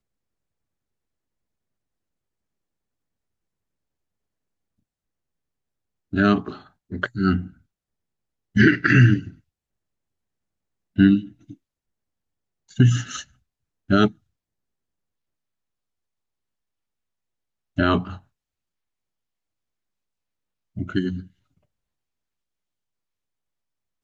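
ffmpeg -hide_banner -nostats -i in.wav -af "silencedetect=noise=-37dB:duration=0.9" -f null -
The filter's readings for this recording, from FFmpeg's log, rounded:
silence_start: 0.00
silence_end: 6.13 | silence_duration: 6.13
silence_start: 7.48
silence_end: 8.56 | silence_duration: 1.08
silence_start: 9.30
silence_end: 10.98 | silence_duration: 1.67
silence_start: 11.53
silence_end: 12.71 | silence_duration: 1.18
silence_start: 14.11
silence_end: 17.78 | silence_duration: 3.67
silence_start: 18.17
silence_end: 20.77 | silence_duration: 2.59
silence_start: 21.23
silence_end: 24.04 | silence_duration: 2.80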